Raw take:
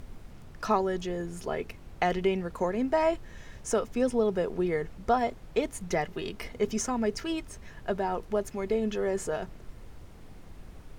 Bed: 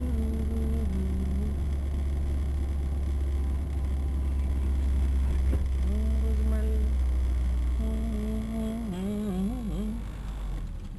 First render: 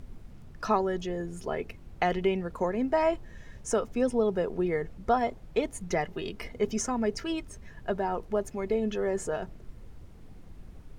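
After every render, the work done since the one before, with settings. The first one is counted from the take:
broadband denoise 6 dB, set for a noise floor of −48 dBFS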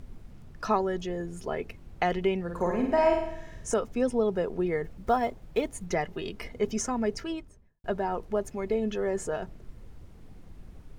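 0:02.43–0:03.74: flutter between parallel walls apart 8.9 metres, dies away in 0.73 s
0:04.84–0:05.87: one scale factor per block 7 bits
0:07.10–0:07.84: fade out and dull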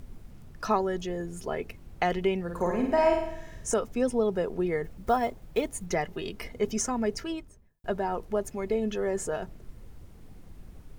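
high-shelf EQ 9,000 Hz +9 dB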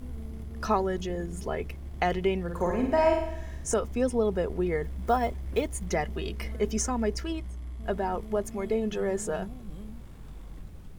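mix in bed −11 dB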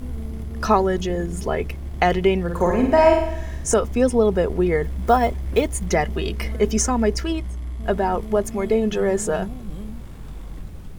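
level +8.5 dB

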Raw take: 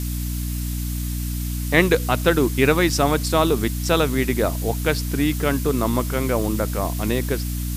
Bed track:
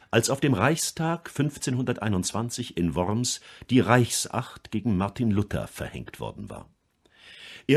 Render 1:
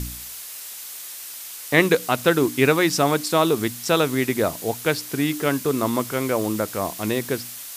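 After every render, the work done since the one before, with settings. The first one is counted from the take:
hum removal 60 Hz, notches 5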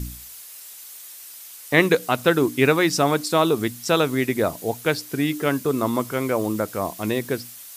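broadband denoise 7 dB, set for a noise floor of −37 dBFS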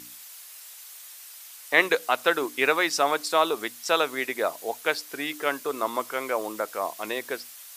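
high-pass filter 610 Hz 12 dB per octave
high-shelf EQ 5,300 Hz −5 dB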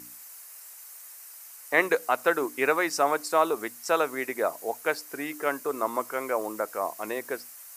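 parametric band 3,500 Hz −12 dB 1 octave
notch filter 3,400 Hz, Q 23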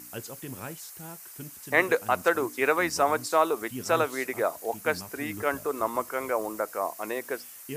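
mix in bed track −17.5 dB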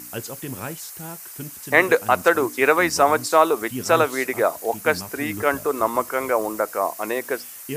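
level +7 dB
brickwall limiter −1 dBFS, peak gain reduction 1.5 dB

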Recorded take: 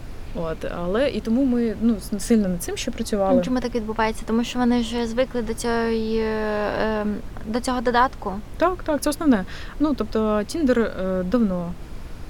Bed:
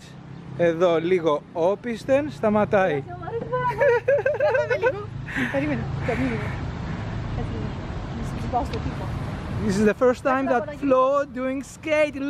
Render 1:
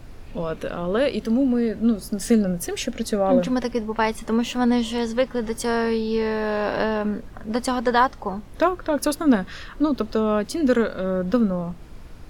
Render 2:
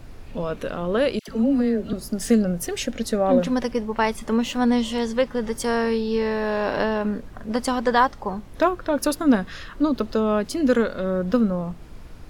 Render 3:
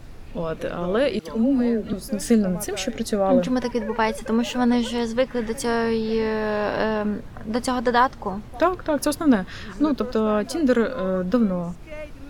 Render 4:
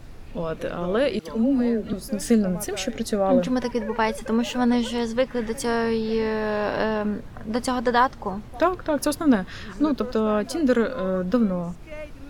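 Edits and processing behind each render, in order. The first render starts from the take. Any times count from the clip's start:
noise reduction from a noise print 6 dB
0:01.19–0:01.93: all-pass dispersion lows, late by 94 ms, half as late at 1,100 Hz
mix in bed −16.5 dB
level −1 dB

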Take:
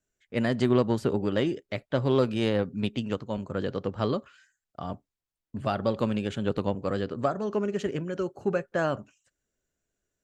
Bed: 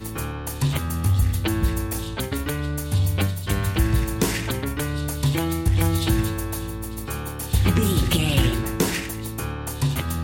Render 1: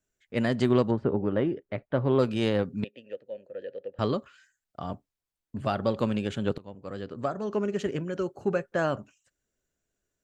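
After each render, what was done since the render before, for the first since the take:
0:00.90–0:02.18: low-pass filter 1,300 Hz → 2,200 Hz
0:02.84–0:03.99: formant filter e
0:06.58–0:07.63: fade in, from −23.5 dB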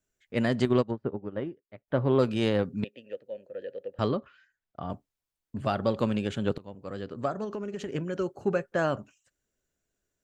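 0:00.65–0:01.88: expander for the loud parts 2.5 to 1, over −36 dBFS
0:04.09–0:04.90: high-frequency loss of the air 230 metres
0:07.44–0:07.95: downward compressor, threshold −31 dBFS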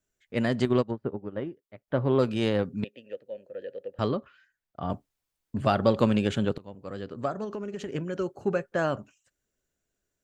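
0:04.82–0:06.45: clip gain +4.5 dB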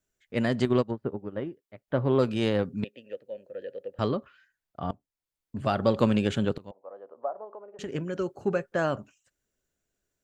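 0:04.91–0:06.06: fade in, from −19.5 dB
0:06.71–0:07.79: flat-topped band-pass 730 Hz, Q 1.5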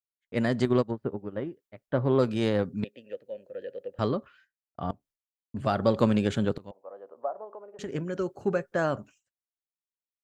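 downward expander −54 dBFS
dynamic equaliser 2,800 Hz, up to −5 dB, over −56 dBFS, Q 4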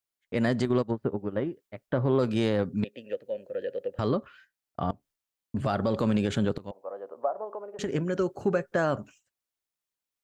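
in parallel at 0 dB: downward compressor, threshold −34 dBFS, peak gain reduction 16 dB
on the sum: brickwall limiter −15.5 dBFS, peak gain reduction 8 dB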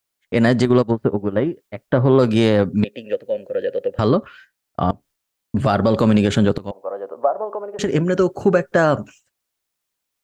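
level +10.5 dB

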